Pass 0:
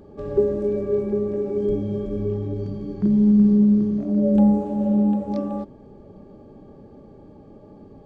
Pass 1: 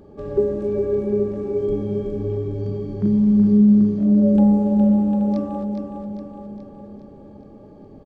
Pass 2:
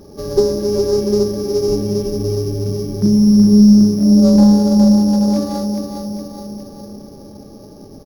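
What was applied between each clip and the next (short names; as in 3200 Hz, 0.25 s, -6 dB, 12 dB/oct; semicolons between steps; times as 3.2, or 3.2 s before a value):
feedback echo 0.414 s, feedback 56%, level -6 dB
sample sorter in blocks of 8 samples; slew limiter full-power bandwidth 210 Hz; gain +5.5 dB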